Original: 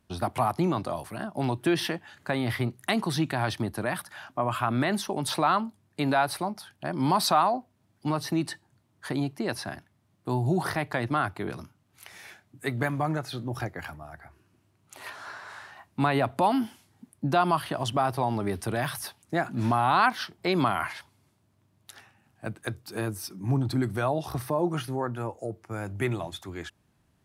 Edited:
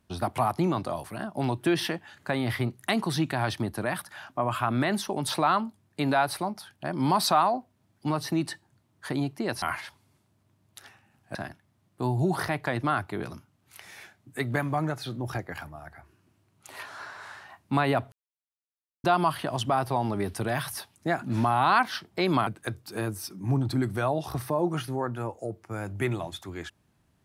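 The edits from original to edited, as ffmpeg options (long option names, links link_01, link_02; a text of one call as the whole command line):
ffmpeg -i in.wav -filter_complex "[0:a]asplit=6[link_01][link_02][link_03][link_04][link_05][link_06];[link_01]atrim=end=9.622[link_07];[link_02]atrim=start=20.738:end=22.472[link_08];[link_03]atrim=start=9.618:end=16.39,asetpts=PTS-STARTPTS,afade=type=out:start_time=6.768:duration=0.004:curve=hsin[link_09];[link_04]atrim=start=16.39:end=17.31,asetpts=PTS-STARTPTS,volume=0[link_10];[link_05]atrim=start=17.31:end=20.742,asetpts=PTS-STARTPTS,afade=type=in:duration=0.004:curve=hsin[link_11];[link_06]atrim=start=22.468[link_12];[link_07][link_08]acrossfade=duration=0.004:curve1=hsin:curve2=hsin[link_13];[link_09][link_10][link_11]concat=n=3:v=0:a=1[link_14];[link_13][link_14]acrossfade=duration=0.004:curve1=hsin:curve2=hsin[link_15];[link_15][link_12]acrossfade=duration=0.004:curve1=hsin:curve2=hsin" out.wav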